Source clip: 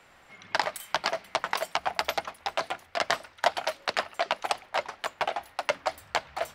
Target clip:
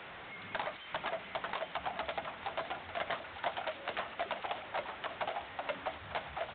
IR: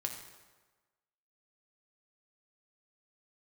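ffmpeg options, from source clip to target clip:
-af "aeval=exprs='val(0)+0.5*0.0178*sgn(val(0))':c=same,highpass=54,aresample=8000,asoftclip=type=tanh:threshold=0.0944,aresample=44100,aecho=1:1:898:0.237,volume=0.422"

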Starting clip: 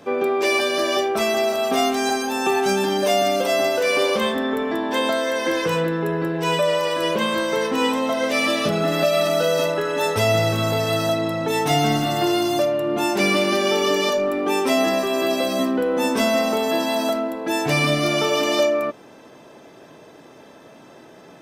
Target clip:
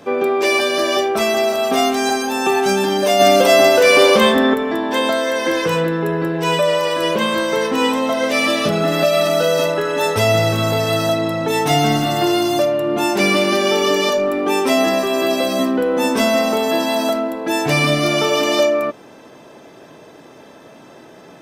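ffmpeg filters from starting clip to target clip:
-filter_complex "[0:a]asplit=3[s0][s1][s2];[s0]afade=t=out:st=3.19:d=0.02[s3];[s1]acontrast=45,afade=t=in:st=3.19:d=0.02,afade=t=out:st=4.53:d=0.02[s4];[s2]afade=t=in:st=4.53:d=0.02[s5];[s3][s4][s5]amix=inputs=3:normalize=0,volume=1.5"

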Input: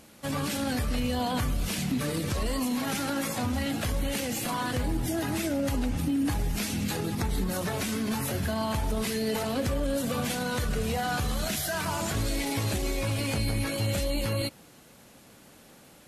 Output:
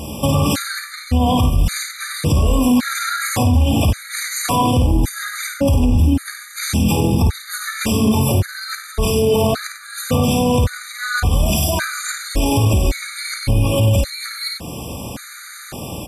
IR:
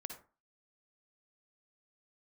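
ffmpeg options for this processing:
-af "equalizer=f=78:w=1.1:g=11,acompressor=threshold=0.0158:ratio=3,aecho=1:1:52.48|93.29:0.501|0.398,alimiter=level_in=26.6:limit=0.891:release=50:level=0:latency=1,afftfilt=real='re*gt(sin(2*PI*0.89*pts/sr)*(1-2*mod(floor(b*sr/1024/1200),2)),0)':imag='im*gt(sin(2*PI*0.89*pts/sr)*(1-2*mod(floor(b*sr/1024/1200),2)),0)':win_size=1024:overlap=0.75,volume=0.531"

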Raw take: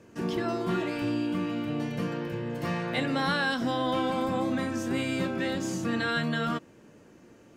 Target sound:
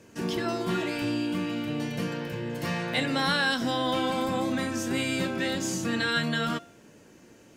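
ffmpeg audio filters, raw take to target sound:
-af "highshelf=f=2500:g=8,bandreject=f=1200:w=18,bandreject=f=347.7:t=h:w=4,bandreject=f=695.4:t=h:w=4,bandreject=f=1043.1:t=h:w=4,bandreject=f=1390.8:t=h:w=4,bandreject=f=1738.5:t=h:w=4,bandreject=f=2086.2:t=h:w=4,bandreject=f=2433.9:t=h:w=4,bandreject=f=2781.6:t=h:w=4,bandreject=f=3129.3:t=h:w=4,bandreject=f=3477:t=h:w=4,bandreject=f=3824.7:t=h:w=4,bandreject=f=4172.4:t=h:w=4,bandreject=f=4520.1:t=h:w=4,bandreject=f=4867.8:t=h:w=4,bandreject=f=5215.5:t=h:w=4,bandreject=f=5563.2:t=h:w=4,bandreject=f=5910.9:t=h:w=4,bandreject=f=6258.6:t=h:w=4,bandreject=f=6606.3:t=h:w=4,bandreject=f=6954:t=h:w=4,bandreject=f=7301.7:t=h:w=4,bandreject=f=7649.4:t=h:w=4,bandreject=f=7997.1:t=h:w=4,bandreject=f=8344.8:t=h:w=4,bandreject=f=8692.5:t=h:w=4,bandreject=f=9040.2:t=h:w=4,bandreject=f=9387.9:t=h:w=4,bandreject=f=9735.6:t=h:w=4"

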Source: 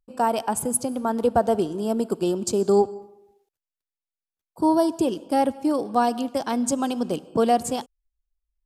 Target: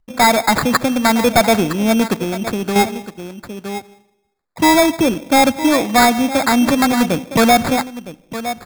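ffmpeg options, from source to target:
-filter_complex "[0:a]asplit=2[s0][s1];[s1]adynamicsmooth=sensitivity=4:basefreq=920,volume=0.944[s2];[s0][s2]amix=inputs=2:normalize=0,equalizer=f=400:t=o:w=0.67:g=-10,equalizer=f=1600:t=o:w=0.67:g=10,equalizer=f=4000:t=o:w=0.67:g=-12,equalizer=f=10000:t=o:w=0.67:g=4,asplit=2[s3][s4];[s4]aecho=0:1:962:0.168[s5];[s3][s5]amix=inputs=2:normalize=0,acrusher=samples=15:mix=1:aa=0.000001,asoftclip=type=tanh:threshold=0.2,asettb=1/sr,asplit=3[s6][s7][s8];[s6]atrim=end=2.144[s9];[s7]atrim=start=2.14:end=2.76,asetpts=PTS-STARTPTS,afade=t=in:d=0.004:c=qsin,afade=t=out:st=0.616:d=0.004:c=qsin,acompressor=threshold=0.0501:ratio=6[s10];[s8]atrim=start=2.756[s11];[s9][s10]acrossfade=d=0.004:c1=hsin:c2=qsin[s12];[s12][s11]acrossfade=d=0.004:c1=qsin:c2=hsin,volume=2.51"

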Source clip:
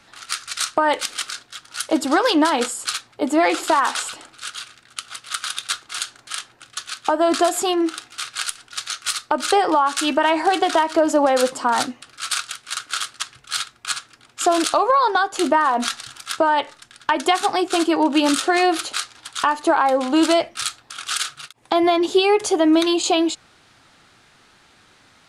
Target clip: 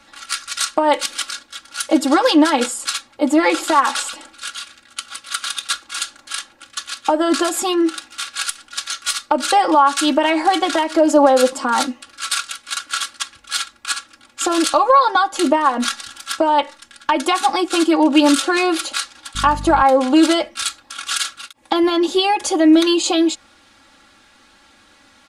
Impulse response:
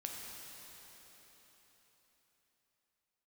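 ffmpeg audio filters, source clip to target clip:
-filter_complex "[0:a]aecho=1:1:3.6:0.91,asettb=1/sr,asplit=3[s0][s1][s2];[s0]atrim=end=19.354[s3];[s1]atrim=start=19.35:end=19.83,asetpts=PTS-STARTPTS,afade=t=in:d=0.004:c=qsin,afade=t=out:st=0.476:d=0.004:c=qsin,aeval=exprs='val(0)+0.0501*(sin(2*PI*50*n/s)+sin(2*PI*2*50*n/s)/2+sin(2*PI*3*50*n/s)/3+sin(2*PI*4*50*n/s)/4+sin(2*PI*5*50*n/s)/5)':c=same[s4];[s2]atrim=start=19.826[s5];[s3][s4]acrossfade=d=0.004:c1=hsin:c2=qsin[s6];[s6][s5]acrossfade=d=0.004:c1=qsin:c2=hsin"

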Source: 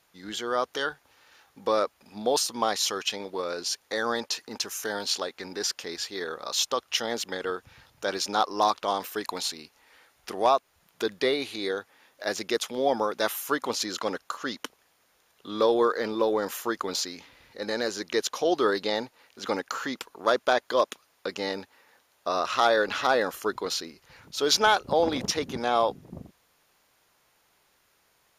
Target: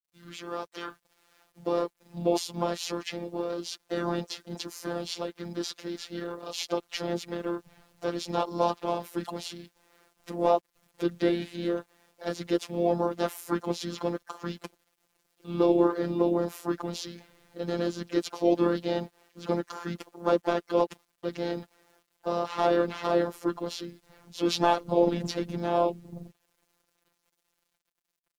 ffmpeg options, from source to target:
-filter_complex "[0:a]acrossover=split=760[s0][s1];[s0]dynaudnorm=f=450:g=7:m=3.35[s2];[s2][s1]amix=inputs=2:normalize=0,asplit=4[s3][s4][s5][s6];[s4]asetrate=29433,aresample=44100,atempo=1.49831,volume=0.398[s7];[s5]asetrate=35002,aresample=44100,atempo=1.25992,volume=0.794[s8];[s6]asetrate=58866,aresample=44100,atempo=0.749154,volume=0.158[s9];[s3][s7][s8][s9]amix=inputs=4:normalize=0,acrusher=bits=8:mix=0:aa=0.000001,afftfilt=real='hypot(re,im)*cos(PI*b)':imag='0':win_size=1024:overlap=0.75,volume=0.398"

